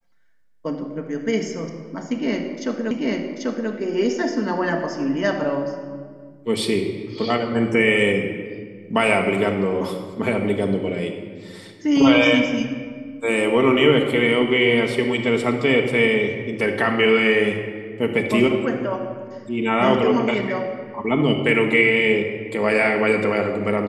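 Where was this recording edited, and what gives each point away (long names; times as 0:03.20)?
0:02.91: the same again, the last 0.79 s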